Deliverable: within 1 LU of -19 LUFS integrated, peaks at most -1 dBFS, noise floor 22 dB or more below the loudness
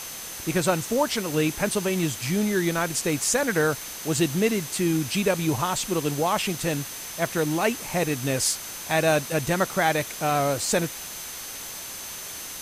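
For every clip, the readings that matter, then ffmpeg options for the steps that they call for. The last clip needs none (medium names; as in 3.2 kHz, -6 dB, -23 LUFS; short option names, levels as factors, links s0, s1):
steady tone 6.2 kHz; tone level -41 dBFS; noise floor -37 dBFS; noise floor target -47 dBFS; loudness -25.0 LUFS; peak level -9.0 dBFS; loudness target -19.0 LUFS
-> -af "bandreject=f=6200:w=30"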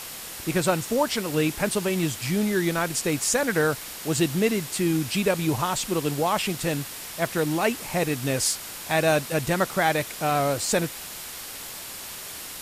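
steady tone not found; noise floor -38 dBFS; noise floor target -48 dBFS
-> -af "afftdn=nr=10:nf=-38"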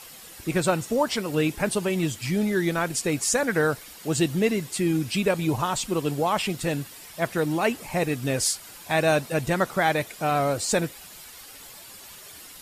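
noise floor -45 dBFS; noise floor target -47 dBFS
-> -af "afftdn=nr=6:nf=-45"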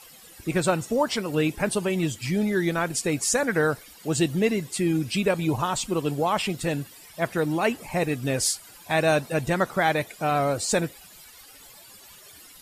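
noise floor -49 dBFS; loudness -25.5 LUFS; peak level -10.0 dBFS; loudness target -19.0 LUFS
-> -af "volume=2.11"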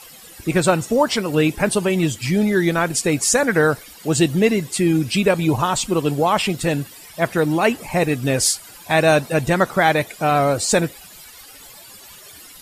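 loudness -19.0 LUFS; peak level -3.5 dBFS; noise floor -42 dBFS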